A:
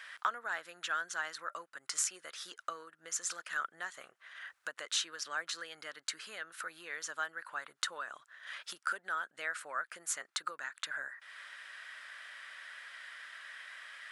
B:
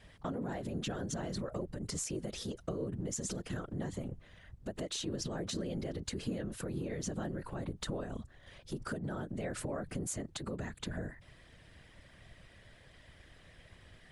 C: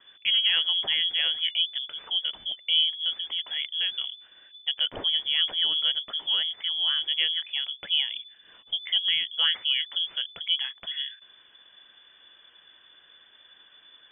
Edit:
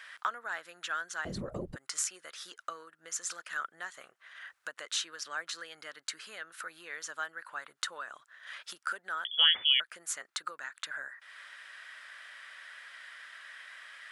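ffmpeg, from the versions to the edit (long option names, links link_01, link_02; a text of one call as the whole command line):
ffmpeg -i take0.wav -i take1.wav -i take2.wav -filter_complex "[0:a]asplit=3[link_01][link_02][link_03];[link_01]atrim=end=1.252[link_04];[1:a]atrim=start=1.248:end=1.762[link_05];[link_02]atrim=start=1.758:end=9.252[link_06];[2:a]atrim=start=9.248:end=9.802[link_07];[link_03]atrim=start=9.798[link_08];[link_04][link_05]acrossfade=duration=0.004:curve1=hsin:curve2=hsin[link_09];[link_09][link_06]acrossfade=duration=0.004:curve1=hsin:curve2=hsin[link_10];[link_10][link_07]acrossfade=duration=0.004:curve1=hsin:curve2=hsin[link_11];[link_11][link_08]acrossfade=duration=0.004:curve1=hsin:curve2=hsin" out.wav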